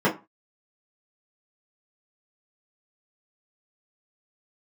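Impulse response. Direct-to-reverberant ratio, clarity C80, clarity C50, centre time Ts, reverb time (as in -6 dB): -7.5 dB, 20.5 dB, 13.0 dB, 17 ms, 0.25 s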